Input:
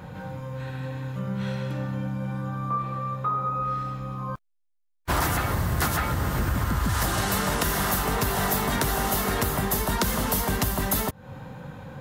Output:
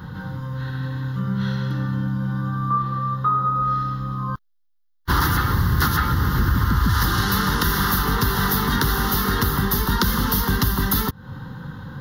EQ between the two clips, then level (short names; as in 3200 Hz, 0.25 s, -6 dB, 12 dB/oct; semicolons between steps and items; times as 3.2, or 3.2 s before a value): fixed phaser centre 2400 Hz, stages 6; +7.0 dB